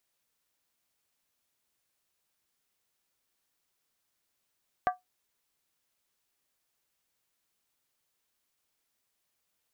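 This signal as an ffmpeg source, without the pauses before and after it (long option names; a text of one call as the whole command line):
ffmpeg -f lavfi -i "aevalsrc='0.106*pow(10,-3*t/0.16)*sin(2*PI*732*t)+0.0562*pow(10,-3*t/0.127)*sin(2*PI*1166.8*t)+0.0299*pow(10,-3*t/0.109)*sin(2*PI*1563.6*t)+0.0158*pow(10,-3*t/0.106)*sin(2*PI*1680.7*t)+0.00841*pow(10,-3*t/0.098)*sin(2*PI*1942*t)':duration=0.63:sample_rate=44100" out.wav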